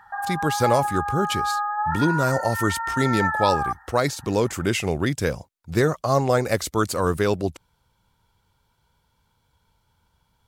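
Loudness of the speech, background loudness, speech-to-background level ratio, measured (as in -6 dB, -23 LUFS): -24.0 LUFS, -26.0 LUFS, 2.0 dB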